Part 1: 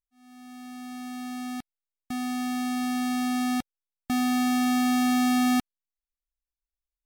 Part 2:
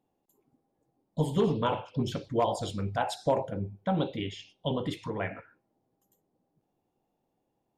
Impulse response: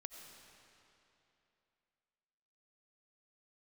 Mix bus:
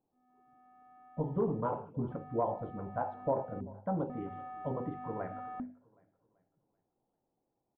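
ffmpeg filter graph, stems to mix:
-filter_complex "[0:a]volume=-11.5dB[link_01];[1:a]volume=-5dB,asplit=3[link_02][link_03][link_04];[link_03]volume=-21.5dB[link_05];[link_04]apad=whole_len=311217[link_06];[link_01][link_06]sidechaincompress=threshold=-37dB:ratio=8:attack=36:release=348[link_07];[link_05]aecho=0:1:385|770|1155|1540|1925|2310:1|0.4|0.16|0.064|0.0256|0.0102[link_08];[link_07][link_02][link_08]amix=inputs=3:normalize=0,lowpass=frequency=1300:width=0.5412,lowpass=frequency=1300:width=1.3066,bandreject=frequency=50:width_type=h:width=6,bandreject=frequency=100:width_type=h:width=6,bandreject=frequency=150:width_type=h:width=6,bandreject=frequency=200:width_type=h:width=6,bandreject=frequency=250:width_type=h:width=6"

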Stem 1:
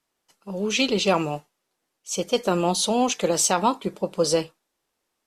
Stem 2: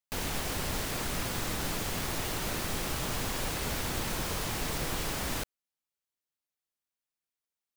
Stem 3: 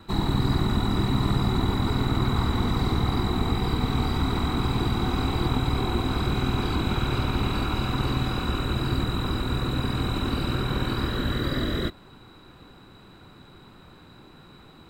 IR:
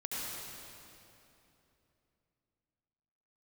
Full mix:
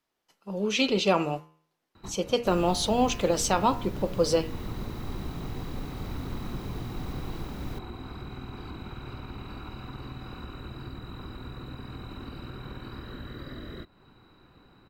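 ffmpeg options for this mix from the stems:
-filter_complex "[0:a]bandreject=frequency=79.03:width_type=h:width=4,bandreject=frequency=158.06:width_type=h:width=4,bandreject=frequency=237.09:width_type=h:width=4,bandreject=frequency=316.12:width_type=h:width=4,bandreject=frequency=395.15:width_type=h:width=4,bandreject=frequency=474.18:width_type=h:width=4,bandreject=frequency=553.21:width_type=h:width=4,bandreject=frequency=632.24:width_type=h:width=4,bandreject=frequency=711.27:width_type=h:width=4,bandreject=frequency=790.3:width_type=h:width=4,bandreject=frequency=869.33:width_type=h:width=4,bandreject=frequency=948.36:width_type=h:width=4,bandreject=frequency=1027.39:width_type=h:width=4,bandreject=frequency=1106.42:width_type=h:width=4,bandreject=frequency=1185.45:width_type=h:width=4,bandreject=frequency=1264.48:width_type=h:width=4,bandreject=frequency=1343.51:width_type=h:width=4,bandreject=frequency=1422.54:width_type=h:width=4,bandreject=frequency=1501.57:width_type=h:width=4,bandreject=frequency=1580.6:width_type=h:width=4,bandreject=frequency=1659.63:width_type=h:width=4,bandreject=frequency=1738.66:width_type=h:width=4,bandreject=frequency=1817.69:width_type=h:width=4,bandreject=frequency=1896.72:width_type=h:width=4,bandreject=frequency=1975.75:width_type=h:width=4,bandreject=frequency=2054.78:width_type=h:width=4,bandreject=frequency=2133.81:width_type=h:width=4,bandreject=frequency=2212.84:width_type=h:width=4,bandreject=frequency=2291.87:width_type=h:width=4,bandreject=frequency=2370.9:width_type=h:width=4,bandreject=frequency=2449.93:width_type=h:width=4,bandreject=frequency=2528.96:width_type=h:width=4,bandreject=frequency=2607.99:width_type=h:width=4,bandreject=frequency=2687.02:width_type=h:width=4,bandreject=frequency=2766.05:width_type=h:width=4,bandreject=frequency=2845.08:width_type=h:width=4,bandreject=frequency=2924.11:width_type=h:width=4,bandreject=frequency=3003.14:width_type=h:width=4,volume=-2dB,asplit=2[link_01][link_02];[1:a]acrossover=split=390[link_03][link_04];[link_04]acompressor=threshold=-53dB:ratio=3[link_05];[link_03][link_05]amix=inputs=2:normalize=0,adelay=2350,volume=0.5dB[link_06];[2:a]bandreject=frequency=3400:width=10,acompressor=threshold=-34dB:ratio=2,adelay=1950,volume=-7.5dB[link_07];[link_02]apad=whole_len=742848[link_08];[link_07][link_08]sidechaincompress=threshold=-36dB:ratio=8:attack=11:release=135[link_09];[link_01][link_06][link_09]amix=inputs=3:normalize=0,equalizer=frequency=8800:width=0.97:gain=-8.5"

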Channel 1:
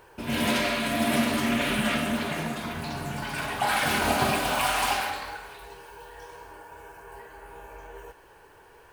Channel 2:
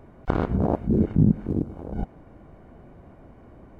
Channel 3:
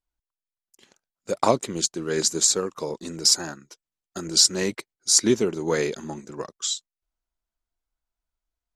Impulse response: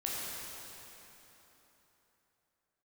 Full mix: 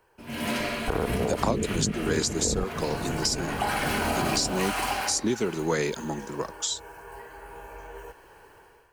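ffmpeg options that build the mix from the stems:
-filter_complex "[0:a]bandreject=frequency=3600:width=9.7,volume=-11.5dB[link_01];[1:a]equalizer=frequency=450:width_type=o:width=0.43:gain=11,adelay=600,volume=-2.5dB[link_02];[2:a]volume=2.5dB[link_03];[link_01][link_02]amix=inputs=2:normalize=0,dynaudnorm=framelen=180:gausssize=5:maxgain=13dB,alimiter=limit=-12dB:level=0:latency=1:release=44,volume=0dB[link_04];[link_03][link_04]amix=inputs=2:normalize=0,acrossover=split=280|580[link_05][link_06][link_07];[link_05]acompressor=threshold=-28dB:ratio=4[link_08];[link_06]acompressor=threshold=-33dB:ratio=4[link_09];[link_07]acompressor=threshold=-27dB:ratio=4[link_10];[link_08][link_09][link_10]amix=inputs=3:normalize=0"

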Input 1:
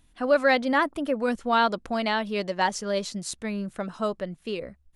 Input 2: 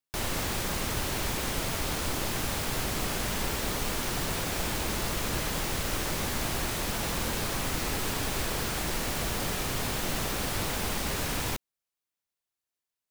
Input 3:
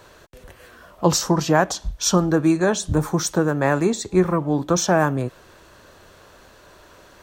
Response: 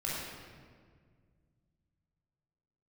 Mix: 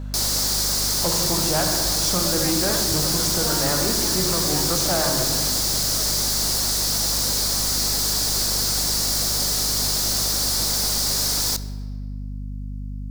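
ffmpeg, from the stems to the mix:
-filter_complex "[0:a]adelay=1950,volume=-10.5dB[link_01];[1:a]highshelf=frequency=3600:width_type=q:width=3:gain=10,volume=3dB,asplit=2[link_02][link_03];[link_03]volume=-19dB[link_04];[2:a]volume=-6.5dB,asplit=2[link_05][link_06];[link_06]volume=-4dB[link_07];[3:a]atrim=start_sample=2205[link_08];[link_04][link_07]amix=inputs=2:normalize=0[link_09];[link_09][link_08]afir=irnorm=-1:irlink=0[link_10];[link_01][link_02][link_05][link_10]amix=inputs=4:normalize=0,lowshelf=frequency=160:gain=-9,aeval=exprs='val(0)+0.0355*(sin(2*PI*50*n/s)+sin(2*PI*2*50*n/s)/2+sin(2*PI*3*50*n/s)/3+sin(2*PI*4*50*n/s)/4+sin(2*PI*5*50*n/s)/5)':channel_layout=same,asoftclip=type=tanh:threshold=-15.5dB"

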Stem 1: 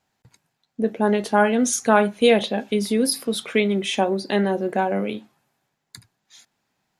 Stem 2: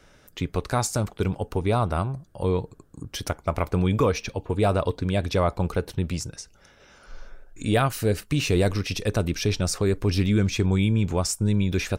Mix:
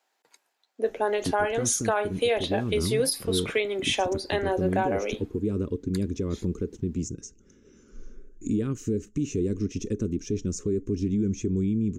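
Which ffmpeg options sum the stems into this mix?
ffmpeg -i stem1.wav -i stem2.wav -filter_complex "[0:a]highpass=frequency=360:width=0.5412,highpass=frequency=360:width=1.3066,volume=0dB[link_01];[1:a]firequalizer=gain_entry='entry(150,0);entry(220,10);entry(410,7);entry(680,-27);entry(1100,-14);entry(2900,-12);entry(4500,-17);entry(6600,5);entry(9900,-22)':delay=0.05:min_phase=1,alimiter=limit=-17.5dB:level=0:latency=1:release=271,adelay=850,volume=-1.5dB[link_02];[link_01][link_02]amix=inputs=2:normalize=0,alimiter=limit=-14.5dB:level=0:latency=1:release=290" out.wav

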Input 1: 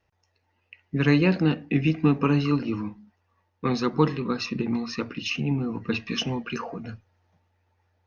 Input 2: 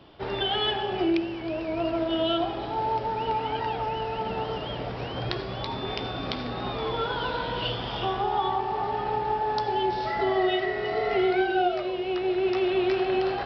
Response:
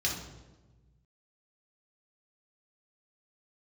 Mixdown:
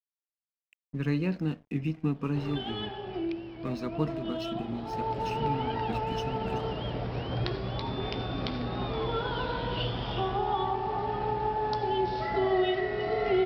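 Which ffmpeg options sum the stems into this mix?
-filter_complex "[0:a]aeval=exprs='sgn(val(0))*max(abs(val(0))-0.00794,0)':channel_layout=same,volume=-13dB[link_01];[1:a]adelay=2150,volume=-4.5dB,afade=type=in:start_time=4.74:duration=0.53:silence=0.421697[link_02];[link_01][link_02]amix=inputs=2:normalize=0,lowshelf=frequency=310:gain=8"

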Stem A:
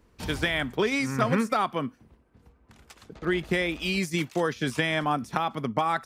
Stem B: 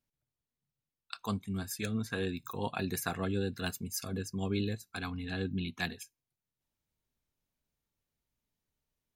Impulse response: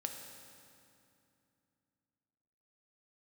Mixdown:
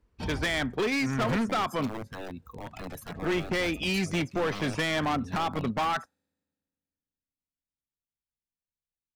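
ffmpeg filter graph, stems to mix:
-filter_complex "[0:a]highshelf=frequency=9600:gain=-7.5,volume=2dB[link_01];[1:a]lowshelf=frequency=300:gain=4.5,aeval=exprs='(mod(18.8*val(0)+1,2)-1)/18.8':channel_layout=same,volume=-5.5dB,asplit=2[link_02][link_03];[link_03]volume=-17.5dB[link_04];[2:a]atrim=start_sample=2205[link_05];[link_04][link_05]afir=irnorm=-1:irlink=0[link_06];[link_01][link_02][link_06]amix=inputs=3:normalize=0,afftdn=noise_reduction=14:noise_floor=-42,asoftclip=type=hard:threshold=-24dB"

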